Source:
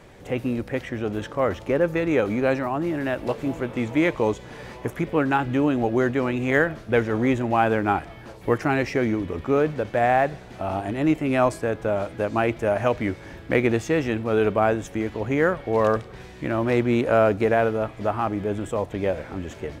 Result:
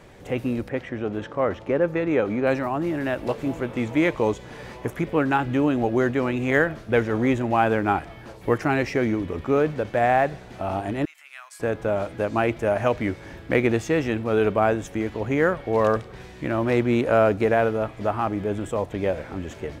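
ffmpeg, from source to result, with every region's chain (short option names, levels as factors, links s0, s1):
-filter_complex "[0:a]asettb=1/sr,asplit=3[s0][s1][s2];[s0]atrim=end=0.694[s3];[s1]atrim=start=0.69:end=2.47,asetpts=PTS-STARTPTS,afade=t=in:d=0.004:c=qsin,afade=t=out:st=1.776:d=0.004:c=qsin,lowpass=f=2500:p=1,lowshelf=f=61:g=-11[s4];[s2]atrim=start=2.466[s5];[s3][s4]acrossfade=d=0.004:c1=hsin:c2=qsin[s6];[s6][s5]acrossfade=d=0.004:c1=qsin:c2=hsin,asettb=1/sr,asplit=3[s7][s8][s9];[s7]atrim=end=11.054[s10];[s8]atrim=start=11.05:end=11.6,asetpts=PTS-STARTPTS,afade=t=in:d=0.004:c=qsin,afade=t=out:st=0.546:d=0.004:c=qsin,equalizer=f=2400:w=0.4:g=-4.5,acompressor=threshold=0.0355:ratio=2.5:attack=3.2:release=140:knee=1:detection=peak,highpass=f=1400:w=0.5412,highpass=f=1400:w=1.3066[s11];[s9]atrim=start=11.596[s12];[s10][s11]acrossfade=d=0.004:c1=hsin:c2=qsin[s13];[s13][s12]acrossfade=d=0.004:c1=qsin:c2=hsin"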